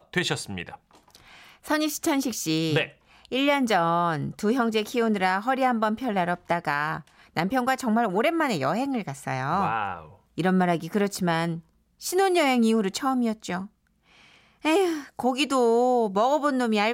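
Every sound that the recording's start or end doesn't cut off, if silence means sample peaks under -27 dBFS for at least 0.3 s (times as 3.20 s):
1.70–2.85 s
3.32–6.97 s
7.37–9.98 s
10.38–11.55 s
12.05–13.61 s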